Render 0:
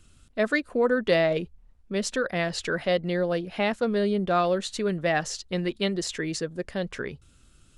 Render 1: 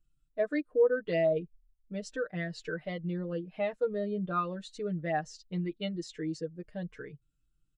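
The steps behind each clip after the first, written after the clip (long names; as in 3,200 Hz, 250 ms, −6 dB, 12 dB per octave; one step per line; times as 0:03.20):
comb filter 6.5 ms, depth 77%
in parallel at −2.5 dB: downward compressor, threshold −28 dBFS, peak gain reduction 12.5 dB
on the sum: every bin expanded away from the loudest bin 1.5 to 1
level −8.5 dB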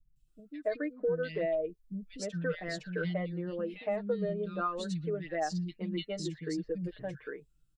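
downward compressor 6 to 1, threshold −32 dBFS, peak gain reduction 12 dB
three-band delay without the direct sound lows, highs, mids 160/280 ms, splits 240/2,300 Hz
level +4 dB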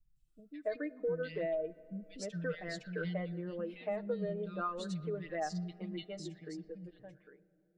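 fade-out on the ending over 2.37 s
on a send at −20 dB: convolution reverb RT60 3.4 s, pre-delay 5 ms
on the sum: level −4 dB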